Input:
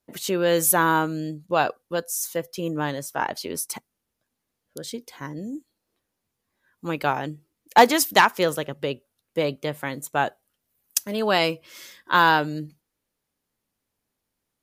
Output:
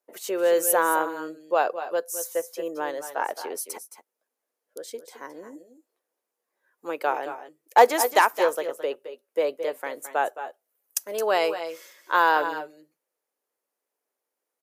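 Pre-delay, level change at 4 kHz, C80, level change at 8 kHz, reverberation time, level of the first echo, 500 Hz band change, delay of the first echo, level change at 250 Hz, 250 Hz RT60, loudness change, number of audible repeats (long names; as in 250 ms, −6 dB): no reverb audible, −8.0 dB, no reverb audible, −3.5 dB, no reverb audible, −12.0 dB, +1.0 dB, 217 ms, −8.5 dB, no reverb audible, −2.0 dB, 1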